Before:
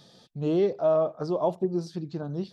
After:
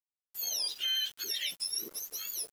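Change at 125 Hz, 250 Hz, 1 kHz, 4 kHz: under -35 dB, -29.5 dB, under -20 dB, no reading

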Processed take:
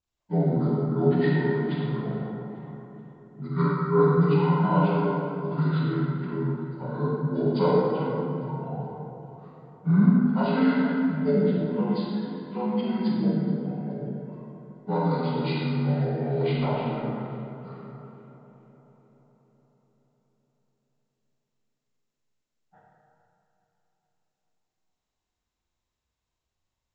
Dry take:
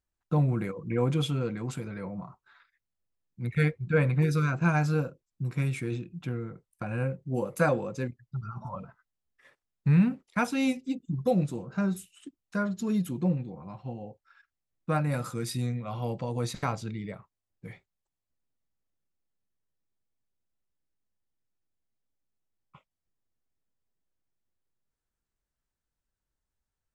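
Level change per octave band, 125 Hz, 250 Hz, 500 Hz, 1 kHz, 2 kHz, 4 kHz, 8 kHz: +3.0 dB, +6.0 dB, +7.0 dB, +6.0 dB, -1.5 dB, +1.5 dB, under -30 dB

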